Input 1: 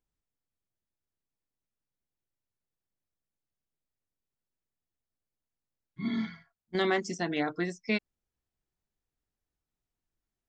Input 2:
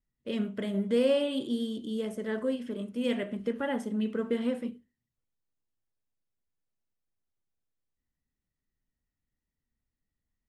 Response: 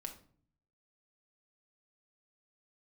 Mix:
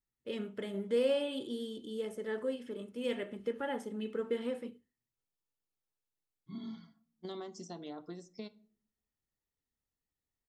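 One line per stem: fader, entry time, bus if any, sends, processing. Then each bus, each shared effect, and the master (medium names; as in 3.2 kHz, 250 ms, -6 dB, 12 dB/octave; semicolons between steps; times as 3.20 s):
-11.0 dB, 0.50 s, send -3.5 dB, compression 4:1, threshold -32 dBFS, peak gain reduction 8.5 dB; high-order bell 2 kHz -14 dB 1 oct
-5.0 dB, 0.00 s, no send, comb 2.3 ms, depth 36%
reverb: on, RT60 0.50 s, pre-delay 5 ms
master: bass shelf 79 Hz -10.5 dB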